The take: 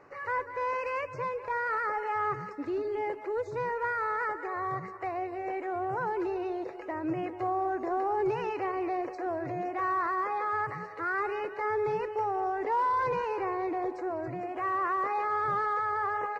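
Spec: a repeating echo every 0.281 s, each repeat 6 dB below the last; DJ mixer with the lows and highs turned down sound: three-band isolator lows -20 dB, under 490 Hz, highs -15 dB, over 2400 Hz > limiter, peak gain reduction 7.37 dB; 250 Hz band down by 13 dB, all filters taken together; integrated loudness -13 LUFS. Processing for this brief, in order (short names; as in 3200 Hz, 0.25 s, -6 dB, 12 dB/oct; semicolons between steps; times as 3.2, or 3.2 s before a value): three-band isolator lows -20 dB, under 490 Hz, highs -15 dB, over 2400 Hz; bell 250 Hz -4.5 dB; feedback echo 0.281 s, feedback 50%, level -6 dB; gain +23 dB; limiter -5 dBFS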